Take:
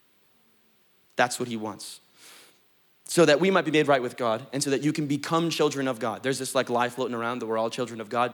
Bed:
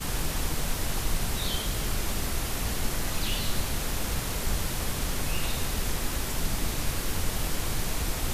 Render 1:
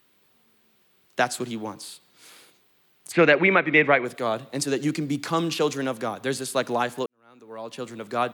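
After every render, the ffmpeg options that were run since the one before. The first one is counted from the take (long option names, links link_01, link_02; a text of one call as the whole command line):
ffmpeg -i in.wav -filter_complex "[0:a]asplit=3[link_01][link_02][link_03];[link_01]afade=type=out:start_time=3.11:duration=0.02[link_04];[link_02]lowpass=frequency=2200:width_type=q:width=4.6,afade=type=in:start_time=3.11:duration=0.02,afade=type=out:start_time=4.04:duration=0.02[link_05];[link_03]afade=type=in:start_time=4.04:duration=0.02[link_06];[link_04][link_05][link_06]amix=inputs=3:normalize=0,asplit=2[link_07][link_08];[link_07]atrim=end=7.06,asetpts=PTS-STARTPTS,afade=type=out:start_time=7.056:duration=0.004:curve=hsin[link_09];[link_08]atrim=start=7.06,asetpts=PTS-STARTPTS,afade=type=in:duration=0.97:curve=qua[link_10];[link_09][link_10]concat=n=2:v=0:a=1" out.wav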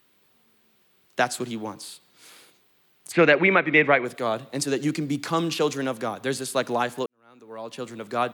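ffmpeg -i in.wav -af anull out.wav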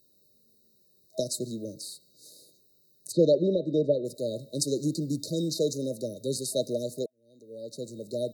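ffmpeg -i in.wav -af "afftfilt=real='re*(1-between(b*sr/4096,640,3700))':imag='im*(1-between(b*sr/4096,640,3700))':win_size=4096:overlap=0.75,equalizer=frequency=250:width_type=o:width=1:gain=-4,equalizer=frequency=500:width_type=o:width=1:gain=-4,equalizer=frequency=1000:width_type=o:width=1:gain=11,equalizer=frequency=2000:width_type=o:width=1:gain=-6" out.wav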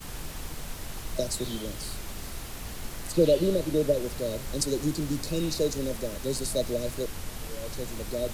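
ffmpeg -i in.wav -i bed.wav -filter_complex "[1:a]volume=-8.5dB[link_01];[0:a][link_01]amix=inputs=2:normalize=0" out.wav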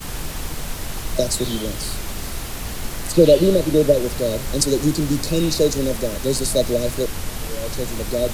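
ffmpeg -i in.wav -af "volume=9.5dB,alimiter=limit=-1dB:level=0:latency=1" out.wav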